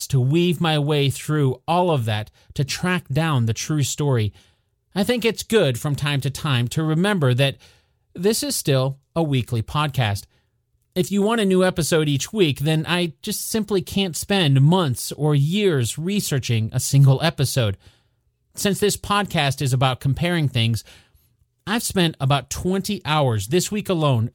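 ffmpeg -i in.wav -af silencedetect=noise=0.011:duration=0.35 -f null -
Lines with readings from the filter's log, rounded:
silence_start: 4.39
silence_end: 4.95 | silence_duration: 0.56
silence_start: 7.68
silence_end: 8.16 | silence_duration: 0.47
silence_start: 10.24
silence_end: 10.96 | silence_duration: 0.72
silence_start: 17.88
silence_end: 18.56 | silence_duration: 0.68
silence_start: 20.98
silence_end: 21.67 | silence_duration: 0.68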